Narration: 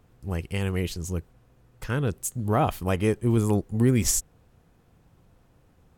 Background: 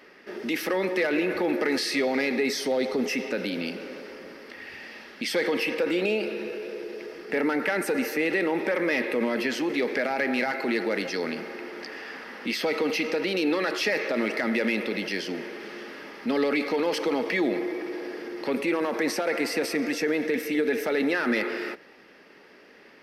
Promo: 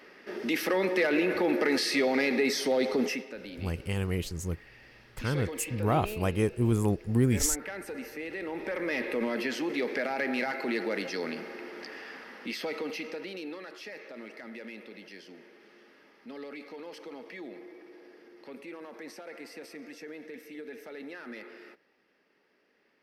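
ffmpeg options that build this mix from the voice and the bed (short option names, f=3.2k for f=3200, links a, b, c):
-filter_complex "[0:a]adelay=3350,volume=-3.5dB[a];[1:a]volume=7.5dB,afade=t=out:st=3.04:d=0.21:silence=0.251189,afade=t=in:st=8.34:d=0.8:silence=0.375837,afade=t=out:st=11.91:d=1.75:silence=0.211349[b];[a][b]amix=inputs=2:normalize=0"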